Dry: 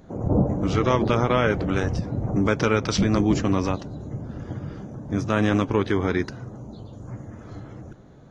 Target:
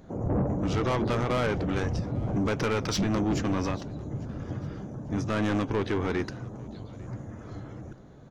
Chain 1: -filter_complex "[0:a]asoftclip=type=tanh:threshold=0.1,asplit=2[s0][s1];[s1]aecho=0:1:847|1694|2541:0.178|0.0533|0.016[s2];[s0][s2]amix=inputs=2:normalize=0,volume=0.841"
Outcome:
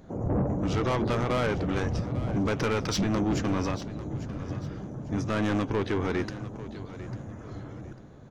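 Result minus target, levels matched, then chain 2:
echo-to-direct +8.5 dB
-filter_complex "[0:a]asoftclip=type=tanh:threshold=0.1,asplit=2[s0][s1];[s1]aecho=0:1:847|1694:0.0668|0.0201[s2];[s0][s2]amix=inputs=2:normalize=0,volume=0.841"

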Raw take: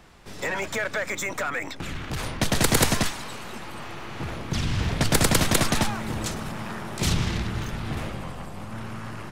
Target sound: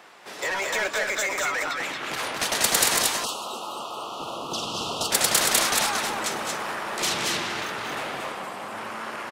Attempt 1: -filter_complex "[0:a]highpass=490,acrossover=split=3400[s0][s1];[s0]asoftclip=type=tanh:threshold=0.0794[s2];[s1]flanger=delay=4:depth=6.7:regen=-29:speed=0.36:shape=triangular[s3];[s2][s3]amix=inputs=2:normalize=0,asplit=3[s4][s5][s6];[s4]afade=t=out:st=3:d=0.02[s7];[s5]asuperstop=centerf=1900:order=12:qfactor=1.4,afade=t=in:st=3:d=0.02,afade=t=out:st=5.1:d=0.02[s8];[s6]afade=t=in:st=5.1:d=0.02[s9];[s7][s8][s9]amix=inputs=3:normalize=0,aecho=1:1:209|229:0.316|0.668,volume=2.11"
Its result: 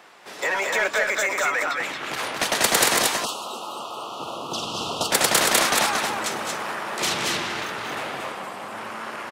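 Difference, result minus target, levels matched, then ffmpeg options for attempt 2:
saturation: distortion -7 dB
-filter_complex "[0:a]highpass=490,acrossover=split=3400[s0][s1];[s0]asoftclip=type=tanh:threshold=0.0282[s2];[s1]flanger=delay=4:depth=6.7:regen=-29:speed=0.36:shape=triangular[s3];[s2][s3]amix=inputs=2:normalize=0,asplit=3[s4][s5][s6];[s4]afade=t=out:st=3:d=0.02[s7];[s5]asuperstop=centerf=1900:order=12:qfactor=1.4,afade=t=in:st=3:d=0.02,afade=t=out:st=5.1:d=0.02[s8];[s6]afade=t=in:st=5.1:d=0.02[s9];[s7][s8][s9]amix=inputs=3:normalize=0,aecho=1:1:209|229:0.316|0.668,volume=2.11"

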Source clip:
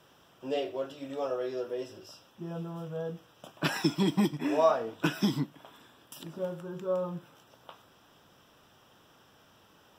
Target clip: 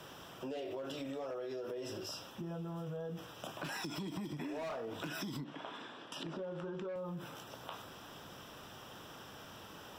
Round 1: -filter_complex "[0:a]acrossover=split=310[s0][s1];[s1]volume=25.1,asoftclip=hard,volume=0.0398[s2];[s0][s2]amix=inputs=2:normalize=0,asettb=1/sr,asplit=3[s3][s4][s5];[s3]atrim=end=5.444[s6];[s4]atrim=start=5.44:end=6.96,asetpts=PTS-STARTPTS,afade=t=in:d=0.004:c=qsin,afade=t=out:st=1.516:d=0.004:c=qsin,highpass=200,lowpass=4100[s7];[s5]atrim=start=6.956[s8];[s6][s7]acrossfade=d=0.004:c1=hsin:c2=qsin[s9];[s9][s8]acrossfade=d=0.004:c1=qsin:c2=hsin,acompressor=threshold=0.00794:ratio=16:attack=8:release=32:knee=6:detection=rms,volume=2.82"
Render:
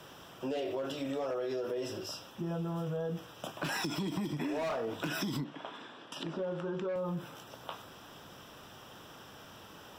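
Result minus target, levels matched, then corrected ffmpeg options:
compression: peak gain reduction -6.5 dB
-filter_complex "[0:a]acrossover=split=310[s0][s1];[s1]volume=25.1,asoftclip=hard,volume=0.0398[s2];[s0][s2]amix=inputs=2:normalize=0,asettb=1/sr,asplit=3[s3][s4][s5];[s3]atrim=end=5.444[s6];[s4]atrim=start=5.44:end=6.96,asetpts=PTS-STARTPTS,afade=t=in:d=0.004:c=qsin,afade=t=out:st=1.516:d=0.004:c=qsin,highpass=200,lowpass=4100[s7];[s5]atrim=start=6.956[s8];[s6][s7]acrossfade=d=0.004:c1=hsin:c2=qsin[s9];[s9][s8]acrossfade=d=0.004:c1=qsin:c2=hsin,acompressor=threshold=0.00355:ratio=16:attack=8:release=32:knee=6:detection=rms,volume=2.82"

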